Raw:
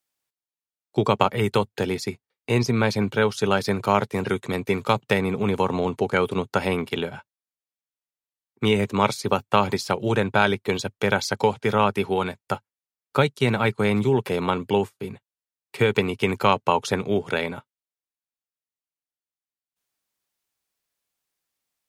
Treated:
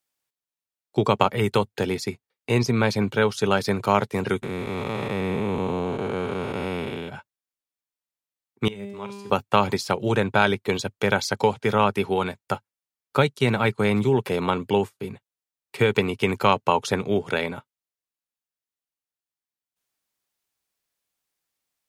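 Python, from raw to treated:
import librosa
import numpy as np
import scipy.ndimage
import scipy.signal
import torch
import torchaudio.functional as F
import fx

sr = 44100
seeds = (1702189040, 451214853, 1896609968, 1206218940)

y = fx.spec_blur(x, sr, span_ms=406.0, at=(4.42, 7.08), fade=0.02)
y = fx.comb_fb(y, sr, f0_hz=200.0, decay_s=1.7, harmonics='all', damping=0.0, mix_pct=90, at=(8.68, 9.3))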